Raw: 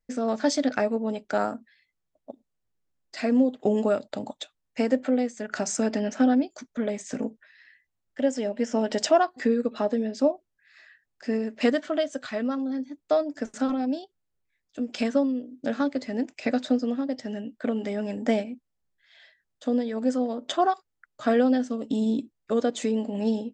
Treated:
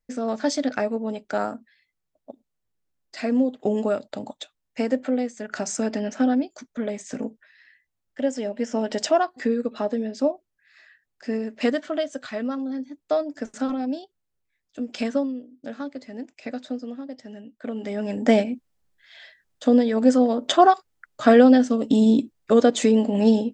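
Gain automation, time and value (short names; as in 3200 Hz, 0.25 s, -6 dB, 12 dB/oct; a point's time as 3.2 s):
15.14 s 0 dB
15.58 s -7 dB
17.55 s -7 dB
17.91 s +0.5 dB
18.42 s +8 dB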